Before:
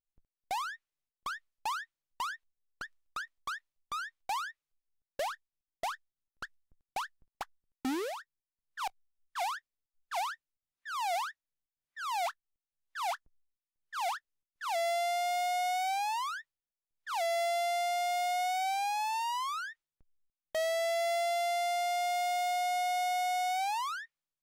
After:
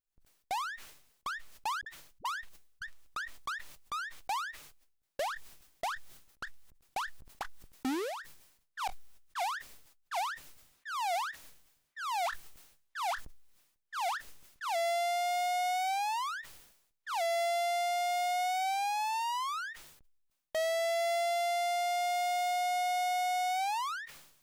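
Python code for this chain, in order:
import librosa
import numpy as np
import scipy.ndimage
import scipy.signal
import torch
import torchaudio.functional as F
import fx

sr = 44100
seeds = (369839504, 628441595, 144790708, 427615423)

y = fx.dispersion(x, sr, late='highs', ms=54.0, hz=350.0, at=(1.81, 2.82))
y = fx.sustainer(y, sr, db_per_s=70.0)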